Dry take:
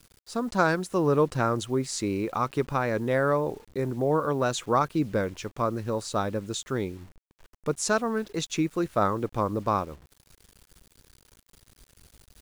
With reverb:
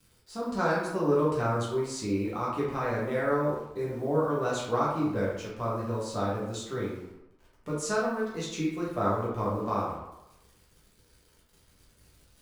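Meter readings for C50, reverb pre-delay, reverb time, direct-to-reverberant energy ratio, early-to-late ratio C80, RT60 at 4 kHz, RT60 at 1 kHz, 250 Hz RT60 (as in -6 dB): 2.0 dB, 6 ms, 0.90 s, -6.5 dB, 5.0 dB, 0.55 s, 0.95 s, 0.80 s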